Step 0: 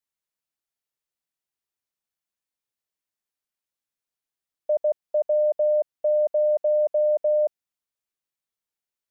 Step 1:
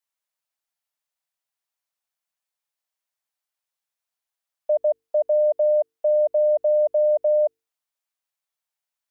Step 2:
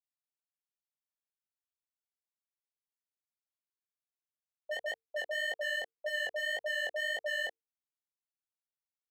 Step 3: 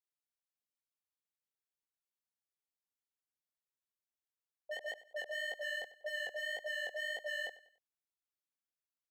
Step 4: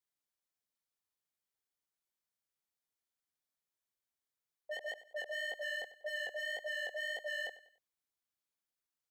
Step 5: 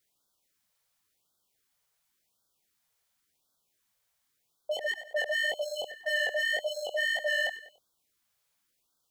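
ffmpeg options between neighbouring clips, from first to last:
-af "lowshelf=f=500:t=q:w=1.5:g=-8.5,bandreject=f=50:t=h:w=6,bandreject=f=100:t=h:w=6,bandreject=f=150:t=h:w=6,bandreject=f=200:t=h:w=6,bandreject=f=250:t=h:w=6,bandreject=f=300:t=h:w=6,bandreject=f=350:t=h:w=6,bandreject=f=400:t=h:w=6,bandreject=f=450:t=h:w=6,volume=1.26"
-af "agate=range=0.126:threshold=0.126:ratio=16:detection=peak,aeval=exprs='0.0355*(abs(mod(val(0)/0.0355+3,4)-2)-1)':c=same,flanger=delay=18:depth=5.1:speed=1.8,volume=1.41"
-af "aecho=1:1:96|192|288:0.141|0.0523|0.0193,volume=0.562"
-filter_complex "[0:a]bandreject=f=2700:w=16,asplit=2[s0][s1];[s1]asoftclip=type=tanh:threshold=0.0106,volume=0.708[s2];[s0][s2]amix=inputs=2:normalize=0,volume=0.708"
-filter_complex "[0:a]asplit=2[s0][s1];[s1]alimiter=level_in=8.41:limit=0.0631:level=0:latency=1,volume=0.119,volume=1.12[s2];[s0][s2]amix=inputs=2:normalize=0,afftfilt=real='re*(1-between(b*sr/1024,260*pow(2300/260,0.5+0.5*sin(2*PI*0.92*pts/sr))/1.41,260*pow(2300/260,0.5+0.5*sin(2*PI*0.92*pts/sr))*1.41))':imag='im*(1-between(b*sr/1024,260*pow(2300/260,0.5+0.5*sin(2*PI*0.92*pts/sr))/1.41,260*pow(2300/260,0.5+0.5*sin(2*PI*0.92*pts/sr))*1.41))':win_size=1024:overlap=0.75,volume=2.51"

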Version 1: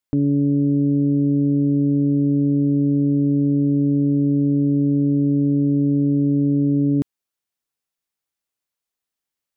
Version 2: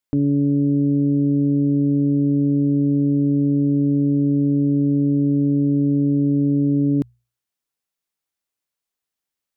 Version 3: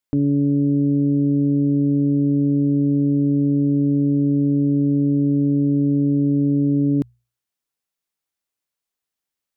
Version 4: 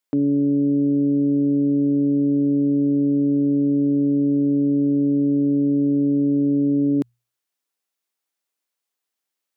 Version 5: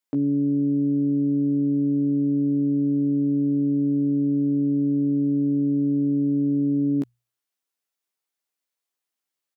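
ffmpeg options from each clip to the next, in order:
-af "bandreject=f=60:t=h:w=6,bandreject=f=120:t=h:w=6"
-af anull
-af "highpass=240,volume=1.26"
-filter_complex "[0:a]asplit=2[s0][s1];[s1]adelay=15,volume=0.531[s2];[s0][s2]amix=inputs=2:normalize=0,volume=0.631"

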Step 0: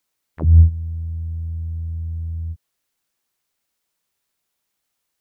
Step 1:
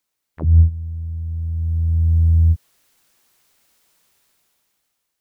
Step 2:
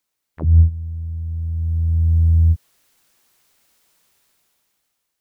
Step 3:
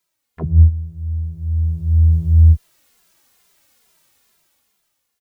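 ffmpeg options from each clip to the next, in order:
-af "dynaudnorm=f=310:g=7:m=6.68,volume=0.841"
-af anull
-filter_complex "[0:a]asplit=2[s0][s1];[s1]adelay=2.5,afreqshift=-2.3[s2];[s0][s2]amix=inputs=2:normalize=1,volume=1.88"

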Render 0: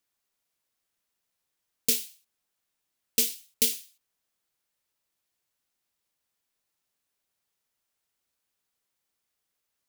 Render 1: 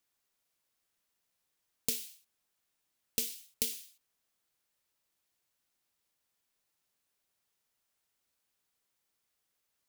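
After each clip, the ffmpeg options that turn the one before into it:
-af "acompressor=threshold=0.0316:ratio=6"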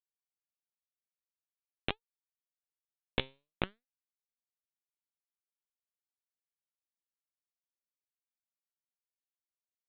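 -af "flanger=delay=15:depth=7.5:speed=2.8,aresample=8000,acrusher=bits=3:dc=4:mix=0:aa=0.000001,aresample=44100,flanger=delay=1.9:depth=5.7:regen=85:speed=0.47:shape=sinusoidal,volume=7.5"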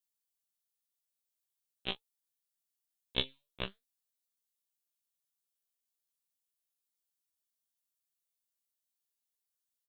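-filter_complex "[0:a]aexciter=amount=3:drive=5.1:freq=3000,asplit=2[s0][s1];[s1]adelay=26,volume=0.251[s2];[s0][s2]amix=inputs=2:normalize=0,afftfilt=real='re*1.73*eq(mod(b,3),0)':imag='im*1.73*eq(mod(b,3),0)':win_size=2048:overlap=0.75,volume=0.75"

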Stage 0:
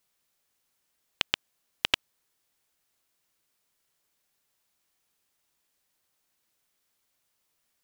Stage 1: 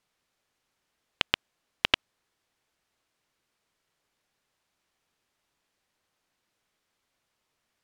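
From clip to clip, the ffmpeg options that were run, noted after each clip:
-af "aemphasis=mode=reproduction:type=50fm,volume=1.5"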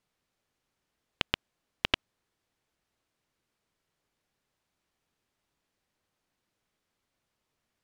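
-af "lowshelf=f=430:g=7,volume=0.596"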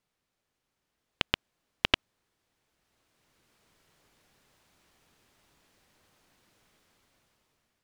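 -af "dynaudnorm=f=340:g=7:m=5.96,volume=0.891"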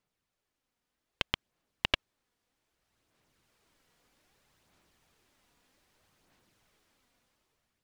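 -af "aphaser=in_gain=1:out_gain=1:delay=4.2:decay=0.33:speed=0.63:type=sinusoidal,volume=0.631"

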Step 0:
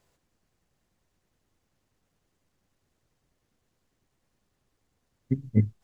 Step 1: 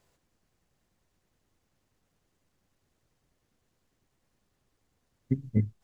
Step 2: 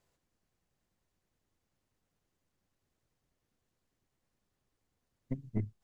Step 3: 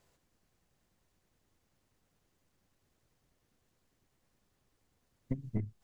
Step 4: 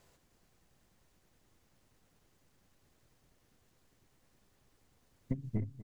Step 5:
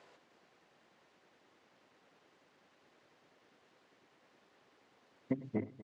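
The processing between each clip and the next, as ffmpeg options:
-af "alimiter=limit=0.2:level=0:latency=1:release=355"
-af "aeval=exprs='(tanh(8.91*val(0)+0.55)-tanh(0.55))/8.91':c=same,volume=0.596"
-af "acompressor=threshold=0.0158:ratio=10,volume=2"
-af "aecho=1:1:244|305:0.112|0.224,alimiter=level_in=1.68:limit=0.0631:level=0:latency=1:release=375,volume=0.596,volume=1.78"
-af "highpass=330,lowpass=3400,aecho=1:1:101:0.1,volume=2.66"

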